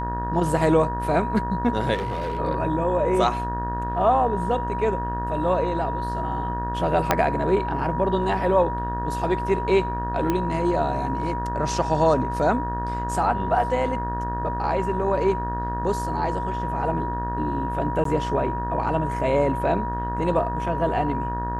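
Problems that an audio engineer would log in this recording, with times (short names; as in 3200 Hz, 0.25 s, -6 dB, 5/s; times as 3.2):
buzz 60 Hz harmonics 31 -30 dBFS
tone 960 Hz -28 dBFS
1.94–2.38 clipped -23.5 dBFS
7.11 pop -3 dBFS
10.3 pop -10 dBFS
18.04–18.05 gap 13 ms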